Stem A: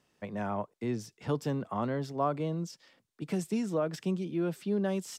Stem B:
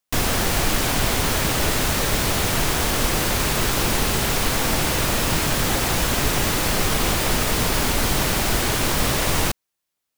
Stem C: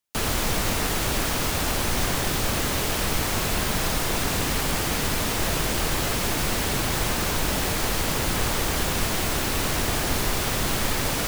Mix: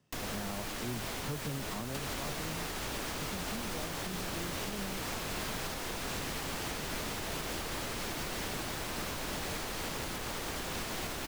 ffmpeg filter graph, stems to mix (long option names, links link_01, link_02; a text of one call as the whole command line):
ffmpeg -i stem1.wav -i stem2.wav -i stem3.wav -filter_complex "[0:a]equalizer=frequency=130:width=0.87:gain=11,volume=-4.5dB[link_01];[1:a]volume=-12.5dB[link_02];[2:a]adelay=1800,volume=-0.5dB[link_03];[link_01][link_02][link_03]amix=inputs=3:normalize=0,acrossover=split=170|6900[link_04][link_05][link_06];[link_04]acompressor=threshold=-41dB:ratio=4[link_07];[link_05]acompressor=threshold=-34dB:ratio=4[link_08];[link_06]acompressor=threshold=-44dB:ratio=4[link_09];[link_07][link_08][link_09]amix=inputs=3:normalize=0,alimiter=level_in=3dB:limit=-24dB:level=0:latency=1:release=292,volume=-3dB" out.wav